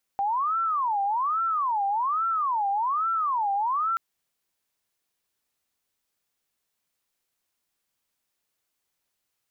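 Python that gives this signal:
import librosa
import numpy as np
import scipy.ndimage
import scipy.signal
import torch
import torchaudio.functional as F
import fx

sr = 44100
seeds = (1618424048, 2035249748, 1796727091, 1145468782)

y = fx.siren(sr, length_s=3.78, kind='wail', low_hz=791.0, high_hz=1350.0, per_s=1.2, wave='sine', level_db=-22.5)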